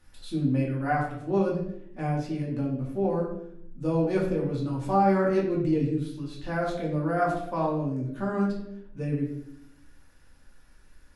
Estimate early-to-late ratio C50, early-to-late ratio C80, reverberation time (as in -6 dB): 4.5 dB, 7.5 dB, 0.70 s